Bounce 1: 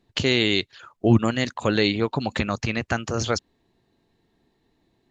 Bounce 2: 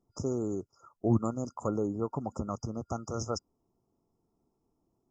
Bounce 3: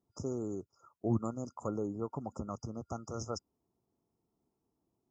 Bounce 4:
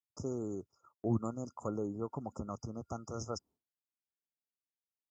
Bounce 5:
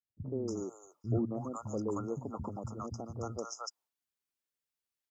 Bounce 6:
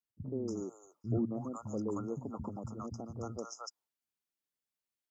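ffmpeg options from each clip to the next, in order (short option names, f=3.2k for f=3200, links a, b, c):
-af "afftfilt=real='re*(1-between(b*sr/4096,1400,4900))':imag='im*(1-between(b*sr/4096,1400,4900))':win_size=4096:overlap=0.75,volume=-9dB"
-af "highpass=50,volume=-5dB"
-af "agate=range=-33dB:threshold=-57dB:ratio=3:detection=peak,volume=-1dB"
-filter_complex "[0:a]acrossover=split=200|710[a][b][c];[b]adelay=80[d];[c]adelay=310[e];[a][d][e]amix=inputs=3:normalize=0,volume=3.5dB"
-af "equalizer=f=220:t=o:w=1.3:g=4.5,volume=-3.5dB"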